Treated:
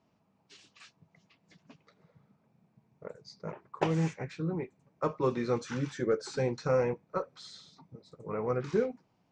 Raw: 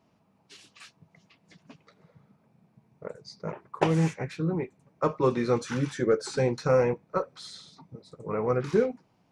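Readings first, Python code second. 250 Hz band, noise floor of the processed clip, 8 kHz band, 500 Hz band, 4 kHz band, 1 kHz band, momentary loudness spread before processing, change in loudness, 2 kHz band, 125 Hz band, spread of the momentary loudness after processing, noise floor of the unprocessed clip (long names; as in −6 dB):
−5.0 dB, −72 dBFS, −6.0 dB, −5.0 dB, −5.0 dB, −5.0 dB, 18 LU, −5.0 dB, −5.0 dB, −5.0 dB, 18 LU, −67 dBFS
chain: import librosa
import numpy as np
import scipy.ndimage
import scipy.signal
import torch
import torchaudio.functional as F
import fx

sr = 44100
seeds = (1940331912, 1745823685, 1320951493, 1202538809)

y = scipy.signal.sosfilt(scipy.signal.butter(6, 7900.0, 'lowpass', fs=sr, output='sos'), x)
y = y * librosa.db_to_amplitude(-5.0)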